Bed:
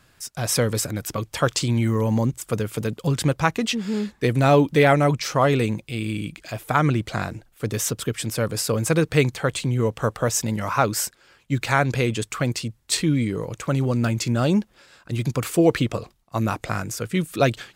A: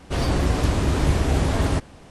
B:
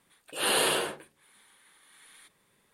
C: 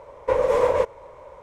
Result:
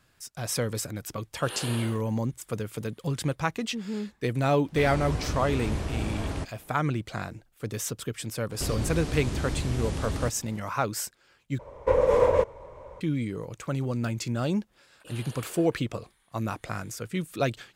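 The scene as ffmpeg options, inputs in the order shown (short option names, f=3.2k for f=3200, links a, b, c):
-filter_complex "[2:a]asplit=2[a][b];[1:a]asplit=2[c][d];[0:a]volume=-7.5dB[e];[d]acrossover=split=450|1700|3700[f][g][h][i];[f]acompressor=threshold=-26dB:ratio=3[j];[g]acompressor=threshold=-45dB:ratio=3[k];[h]acompressor=threshold=-47dB:ratio=3[l];[i]acompressor=threshold=-42dB:ratio=3[m];[j][k][l][m]amix=inputs=4:normalize=0[n];[3:a]lowshelf=f=330:g=9.5[o];[b]acompressor=threshold=-36dB:ratio=6:attack=3.2:release=140:knee=1:detection=peak[p];[e]asplit=2[q][r];[q]atrim=end=11.594[s];[o]atrim=end=1.42,asetpts=PTS-STARTPTS,volume=-4dB[t];[r]atrim=start=13.006[u];[a]atrim=end=2.73,asetpts=PTS-STARTPTS,volume=-11.5dB,afade=t=in:d=0.004:c=hsin,afade=t=out:st=2.726:d=0.004:c=hsin,adelay=1070[v];[c]atrim=end=2.1,asetpts=PTS-STARTPTS,volume=-10.5dB,afade=t=in:d=0.004:c=hsin,afade=t=out:st=2.096:d=0.004:c=hsin,adelay=205065S[w];[n]atrim=end=2.1,asetpts=PTS-STARTPTS,volume=-3.5dB,afade=t=in:d=0.004:c=hsin,afade=t=out:st=2.096:d=0.004:c=hsin,adelay=374850S[x];[p]atrim=end=2.73,asetpts=PTS-STARTPTS,volume=-8.5dB,afade=t=in:d=0.004:c=hsin,afade=t=out:st=2.726:d=0.004:c=hsin,adelay=14720[y];[s][t]acrossfade=d=0.004:c1=hsin:c2=hsin[z];[z][u]acrossfade=d=0.004:c1=hsin:c2=hsin[aa];[aa][v][w][x][y]amix=inputs=5:normalize=0"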